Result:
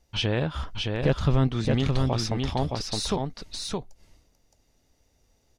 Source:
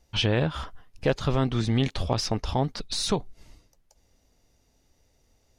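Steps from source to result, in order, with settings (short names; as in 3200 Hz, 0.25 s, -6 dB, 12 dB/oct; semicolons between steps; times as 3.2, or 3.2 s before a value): 0.54–1.48 tone controls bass +7 dB, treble -1 dB; on a send: echo 0.617 s -3.5 dB; on the sum: gain -2 dB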